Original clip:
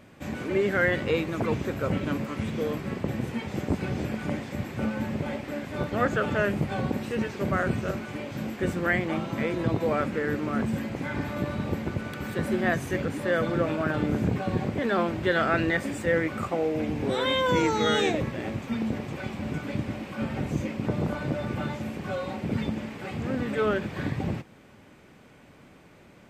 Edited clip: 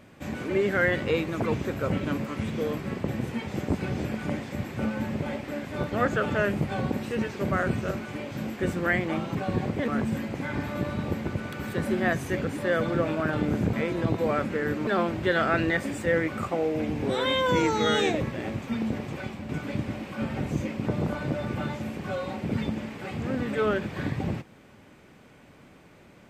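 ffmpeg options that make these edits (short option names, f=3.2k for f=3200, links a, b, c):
-filter_complex "[0:a]asplit=6[a][b][c][d][e][f];[a]atrim=end=9.352[g];[b]atrim=start=14.338:end=14.872[h];[c]atrim=start=10.488:end=14.342[i];[d]atrim=start=9.348:end=10.492[j];[e]atrim=start=14.868:end=19.49,asetpts=PTS-STARTPTS,afade=t=out:st=4.322:d=0.3:silence=0.473151[k];[f]atrim=start=19.49,asetpts=PTS-STARTPTS,afade=t=in:d=0.004:c=hsin:silence=0.473151[l];[g][h]acrossfade=d=0.004:c1=hsin:c2=hsin[m];[m][i]acrossfade=d=0.004:c1=hsin:c2=hsin[n];[n][j]acrossfade=d=0.004:c1=hsin:c2=hsin[o];[k][l]concat=n=2:v=0:a=1[p];[o][p]acrossfade=d=0.004:c1=hsin:c2=hsin"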